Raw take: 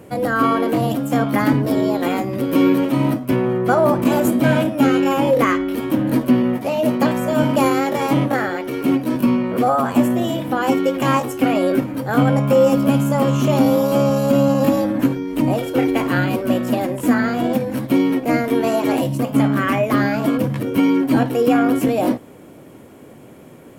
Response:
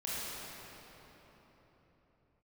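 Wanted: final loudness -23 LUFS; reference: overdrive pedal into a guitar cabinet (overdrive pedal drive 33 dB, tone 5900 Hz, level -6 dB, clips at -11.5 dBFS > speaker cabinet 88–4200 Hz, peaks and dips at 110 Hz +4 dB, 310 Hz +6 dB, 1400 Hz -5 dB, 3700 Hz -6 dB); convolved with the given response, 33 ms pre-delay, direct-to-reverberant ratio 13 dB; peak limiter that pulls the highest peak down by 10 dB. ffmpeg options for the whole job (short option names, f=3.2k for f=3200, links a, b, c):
-filter_complex "[0:a]alimiter=limit=-14.5dB:level=0:latency=1,asplit=2[a][b];[1:a]atrim=start_sample=2205,adelay=33[c];[b][c]afir=irnorm=-1:irlink=0,volume=-17.5dB[d];[a][d]amix=inputs=2:normalize=0,asplit=2[e][f];[f]highpass=f=720:p=1,volume=33dB,asoftclip=type=tanh:threshold=-11.5dB[g];[e][g]amix=inputs=2:normalize=0,lowpass=f=5.9k:p=1,volume=-6dB,highpass=88,equalizer=f=110:t=q:w=4:g=4,equalizer=f=310:t=q:w=4:g=6,equalizer=f=1.4k:t=q:w=4:g=-5,equalizer=f=3.7k:t=q:w=4:g=-6,lowpass=f=4.2k:w=0.5412,lowpass=f=4.2k:w=1.3066,volume=-6.5dB"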